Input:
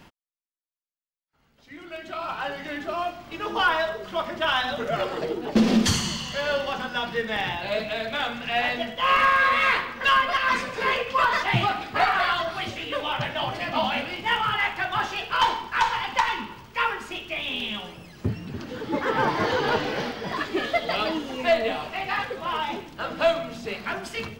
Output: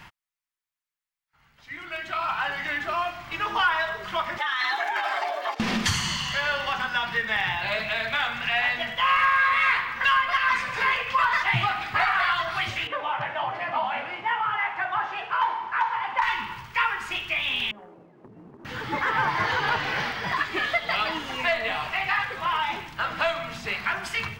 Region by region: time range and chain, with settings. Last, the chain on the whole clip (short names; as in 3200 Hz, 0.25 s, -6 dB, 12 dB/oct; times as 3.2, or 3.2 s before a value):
4.38–5.6 negative-ratio compressor -28 dBFS + frequency shift +240 Hz + notch comb 490 Hz
12.87–16.22 G.711 law mismatch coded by mu + band-pass 590 Hz, Q 0.89
17.71–18.65 Butterworth band-pass 390 Hz, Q 1.2 + compressor 16:1, threshold -41 dBFS + sample leveller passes 1
whole clip: ten-band EQ 125 Hz +4 dB, 250 Hz -8 dB, 500 Hz -8 dB, 1000 Hz +5 dB, 2000 Hz +7 dB; compressor 2:1, threshold -27 dBFS; gain +2 dB